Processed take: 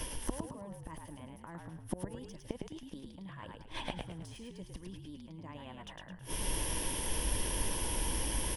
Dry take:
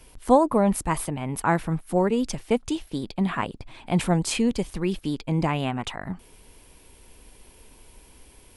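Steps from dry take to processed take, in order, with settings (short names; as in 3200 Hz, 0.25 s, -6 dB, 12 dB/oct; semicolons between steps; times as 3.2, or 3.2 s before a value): de-esser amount 65%; ripple EQ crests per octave 1.2, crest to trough 8 dB; reverse; compressor 8:1, threshold -31 dBFS, peak gain reduction 19.5 dB; reverse; flipped gate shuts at -33 dBFS, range -28 dB; on a send: frequency-shifting echo 0.107 s, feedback 37%, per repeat -53 Hz, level -3.5 dB; on the sum: gain +13.5 dB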